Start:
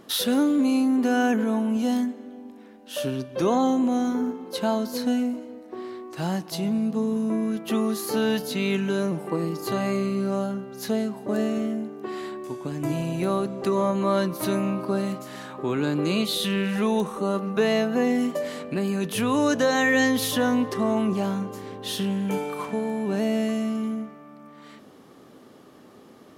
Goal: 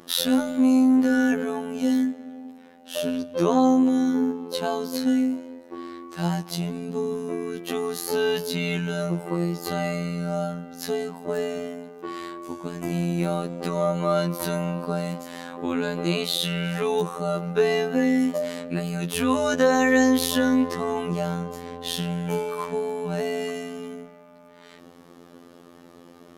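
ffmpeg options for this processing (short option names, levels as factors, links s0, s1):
-af "acontrast=34,afftfilt=real='hypot(re,im)*cos(PI*b)':imag='0':win_size=2048:overlap=0.75,volume=0.891"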